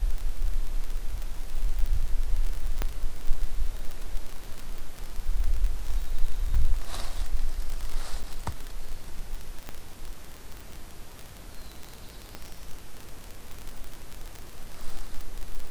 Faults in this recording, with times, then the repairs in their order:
crackle 30/s -28 dBFS
2.82 pop -13 dBFS
8.23–8.24 gap 6.1 ms
9.69 pop -20 dBFS
12.35 pop -21 dBFS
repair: de-click; interpolate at 8.23, 6.1 ms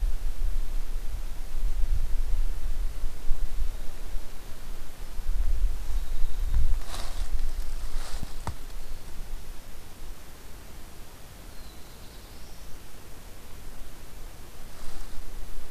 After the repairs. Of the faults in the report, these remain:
9.69 pop

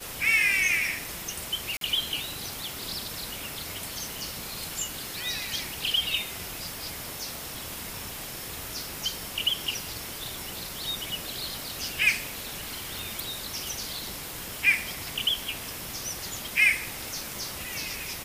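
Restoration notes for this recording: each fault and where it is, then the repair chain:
1.77–1.81 gap 42 ms
12.99 pop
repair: de-click; interpolate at 1.77, 42 ms

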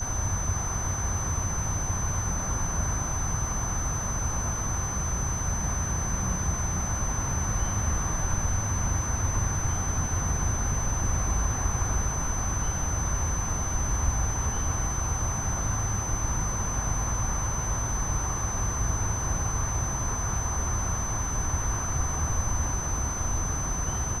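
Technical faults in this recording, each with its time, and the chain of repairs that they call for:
tone 6100 Hz -32 dBFS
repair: notch 6100 Hz, Q 30

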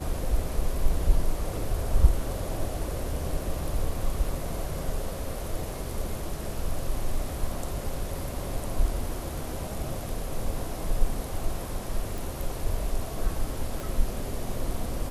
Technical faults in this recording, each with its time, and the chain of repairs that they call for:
12.18 pop
13.8 pop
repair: de-click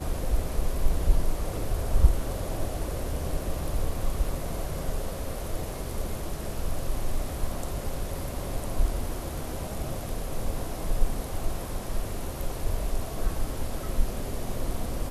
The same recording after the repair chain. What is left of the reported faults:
13.8 pop

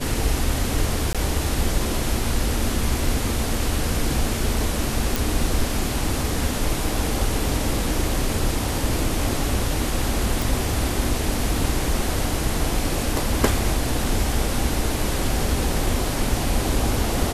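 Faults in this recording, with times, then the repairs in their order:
1.13–1.15 gap 16 ms
5.16 pop
10.42 pop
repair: de-click; interpolate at 1.13, 16 ms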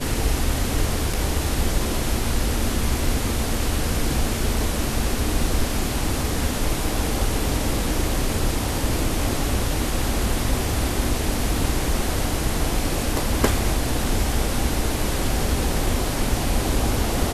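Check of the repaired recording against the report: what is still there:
none

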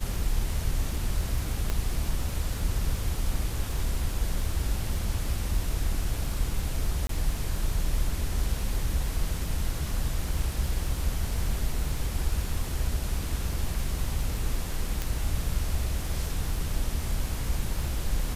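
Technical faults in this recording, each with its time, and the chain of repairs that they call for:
crackle 45/s -35 dBFS
1.7 pop -15 dBFS
7.07–7.09 gap 23 ms
15.02 pop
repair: de-click; interpolate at 7.07, 23 ms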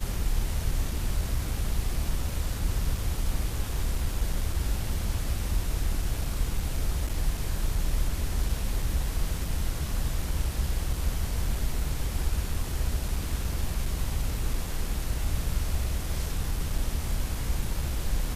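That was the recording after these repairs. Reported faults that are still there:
1.7 pop
15.02 pop

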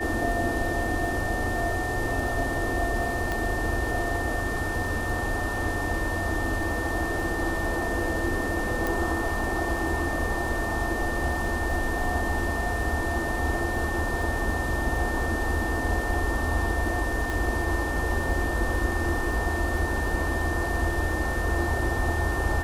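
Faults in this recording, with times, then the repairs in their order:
crackle 21/s -33 dBFS
tone 1800 Hz -31 dBFS
3.32 pop -15 dBFS
8.87 pop
17.3 pop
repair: de-click; notch 1800 Hz, Q 30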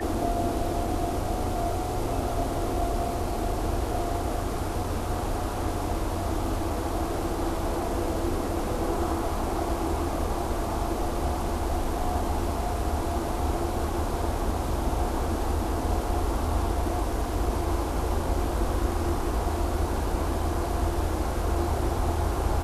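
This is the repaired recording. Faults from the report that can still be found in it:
none

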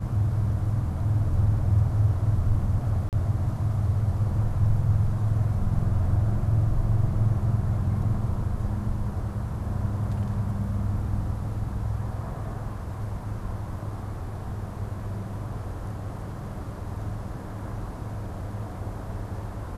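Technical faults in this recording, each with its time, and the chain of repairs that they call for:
3.09–3.13 gap 38 ms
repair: interpolate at 3.09, 38 ms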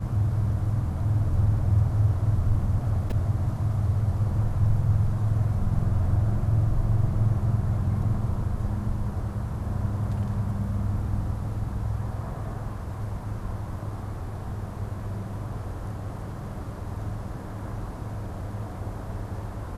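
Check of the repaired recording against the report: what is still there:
none

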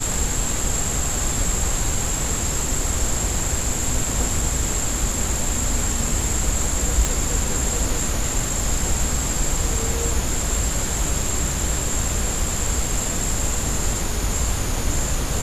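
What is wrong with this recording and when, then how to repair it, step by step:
7.05 pop -6 dBFS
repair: de-click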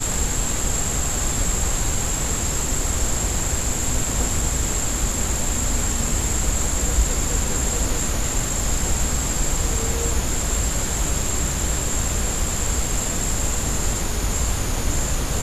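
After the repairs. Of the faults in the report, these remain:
7.05 pop

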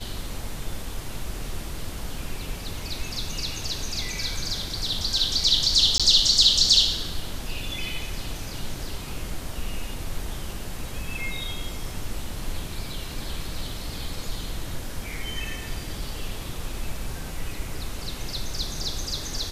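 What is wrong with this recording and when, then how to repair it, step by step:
5.98–6 gap 16 ms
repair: interpolate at 5.98, 16 ms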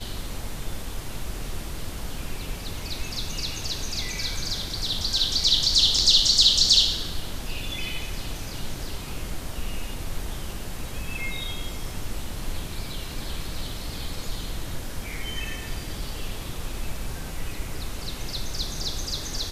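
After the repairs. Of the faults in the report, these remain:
none

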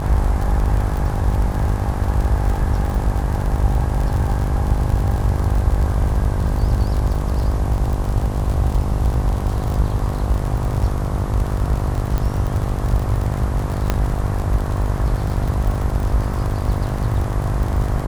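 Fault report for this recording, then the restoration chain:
buzz 50 Hz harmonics 22 -24 dBFS
crackle 55/s -23 dBFS
12.18 pop -10 dBFS
13.9 pop -4 dBFS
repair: de-click; de-hum 50 Hz, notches 22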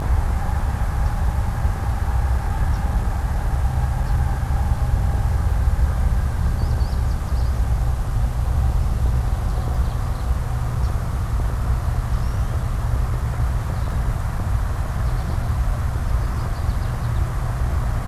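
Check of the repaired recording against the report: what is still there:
13.9 pop

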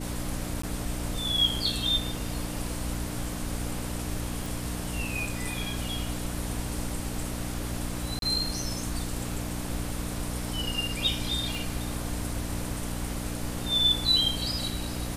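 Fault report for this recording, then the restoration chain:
hum 60 Hz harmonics 5 -35 dBFS
0.62–0.63 gap 14 ms
4.46 pop
8.19–8.22 gap 32 ms
11.55 pop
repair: de-click; de-hum 60 Hz, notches 5; interpolate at 0.62, 14 ms; interpolate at 8.19, 32 ms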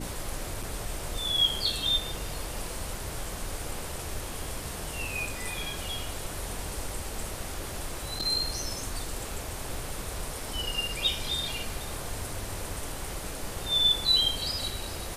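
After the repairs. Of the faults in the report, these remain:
11.55 pop

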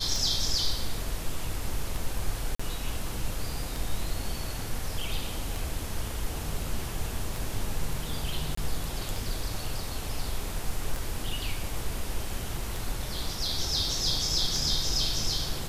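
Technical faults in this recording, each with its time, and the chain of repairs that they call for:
tick 33 1/3 rpm
2.55–2.6 gap 45 ms
8.55–8.57 gap 24 ms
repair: de-click; interpolate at 2.55, 45 ms; interpolate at 8.55, 24 ms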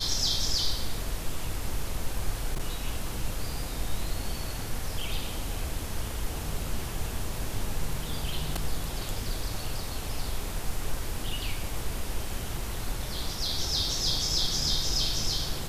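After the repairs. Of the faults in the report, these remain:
none

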